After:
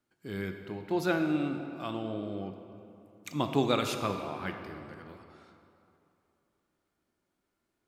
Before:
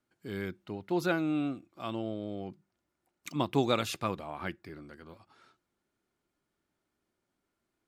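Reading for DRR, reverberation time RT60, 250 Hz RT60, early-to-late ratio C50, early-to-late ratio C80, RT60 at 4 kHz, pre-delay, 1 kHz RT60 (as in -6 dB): 5.5 dB, 2.9 s, 2.7 s, 6.5 dB, 7.5 dB, 1.8 s, 16 ms, 2.9 s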